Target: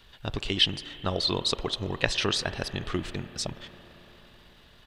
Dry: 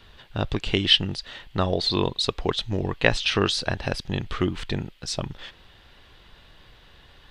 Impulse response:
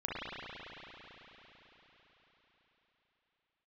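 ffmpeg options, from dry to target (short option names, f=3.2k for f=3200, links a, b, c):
-filter_complex "[0:a]highshelf=f=3.9k:g=9,atempo=1.5,asplit=2[a][b];[1:a]atrim=start_sample=2205,lowpass=2.5k,lowshelf=f=390:g=-6[c];[b][c]afir=irnorm=-1:irlink=0,volume=-15.5dB[d];[a][d]amix=inputs=2:normalize=0,volume=-6dB"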